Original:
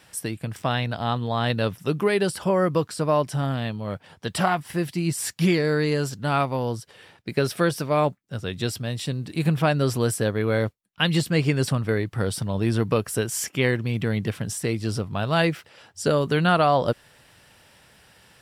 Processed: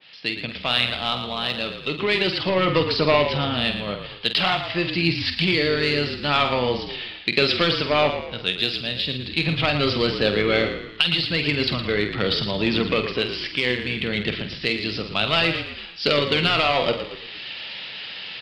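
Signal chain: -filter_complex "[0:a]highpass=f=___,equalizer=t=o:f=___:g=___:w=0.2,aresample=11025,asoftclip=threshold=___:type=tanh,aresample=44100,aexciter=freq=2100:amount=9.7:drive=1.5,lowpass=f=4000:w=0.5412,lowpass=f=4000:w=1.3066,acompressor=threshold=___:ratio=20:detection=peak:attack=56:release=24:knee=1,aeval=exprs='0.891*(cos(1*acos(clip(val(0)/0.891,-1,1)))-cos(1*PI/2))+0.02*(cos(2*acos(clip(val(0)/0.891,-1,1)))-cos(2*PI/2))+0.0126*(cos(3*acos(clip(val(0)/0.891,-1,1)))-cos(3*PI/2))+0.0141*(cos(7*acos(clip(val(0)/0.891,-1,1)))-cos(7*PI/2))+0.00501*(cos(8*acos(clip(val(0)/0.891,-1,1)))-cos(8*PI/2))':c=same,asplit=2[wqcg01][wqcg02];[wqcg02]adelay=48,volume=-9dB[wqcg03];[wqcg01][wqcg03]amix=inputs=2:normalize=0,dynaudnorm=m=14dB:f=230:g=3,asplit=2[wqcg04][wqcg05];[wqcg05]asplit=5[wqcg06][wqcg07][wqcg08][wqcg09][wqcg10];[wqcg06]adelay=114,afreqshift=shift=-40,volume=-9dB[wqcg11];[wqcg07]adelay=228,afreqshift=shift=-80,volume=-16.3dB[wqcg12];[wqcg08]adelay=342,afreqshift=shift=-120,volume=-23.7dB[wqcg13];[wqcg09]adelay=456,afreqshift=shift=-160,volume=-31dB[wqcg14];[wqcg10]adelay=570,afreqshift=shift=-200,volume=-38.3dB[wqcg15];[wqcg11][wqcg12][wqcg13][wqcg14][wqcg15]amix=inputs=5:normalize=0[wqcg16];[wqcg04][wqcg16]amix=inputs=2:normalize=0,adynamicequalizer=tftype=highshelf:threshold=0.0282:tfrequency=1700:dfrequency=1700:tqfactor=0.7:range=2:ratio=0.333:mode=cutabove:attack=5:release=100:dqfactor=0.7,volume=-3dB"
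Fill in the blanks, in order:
180, 1300, 7, -15dB, -26dB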